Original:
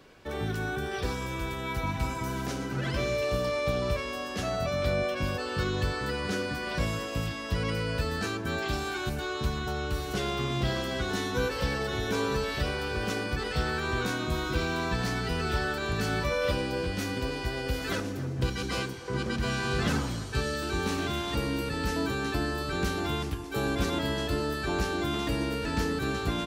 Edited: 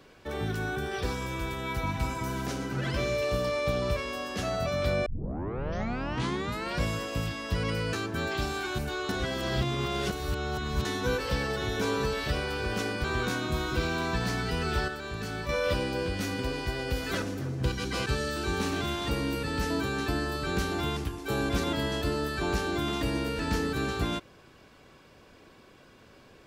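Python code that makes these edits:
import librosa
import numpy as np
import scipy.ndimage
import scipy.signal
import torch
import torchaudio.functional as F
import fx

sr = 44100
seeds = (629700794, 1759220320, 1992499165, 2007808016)

y = fx.edit(x, sr, fx.tape_start(start_s=5.06, length_s=1.75),
    fx.cut(start_s=7.93, length_s=0.31),
    fx.reverse_span(start_s=9.4, length_s=1.76),
    fx.cut(start_s=13.35, length_s=0.47),
    fx.clip_gain(start_s=15.66, length_s=0.61, db=-6.0),
    fx.cut(start_s=18.84, length_s=1.48), tone=tone)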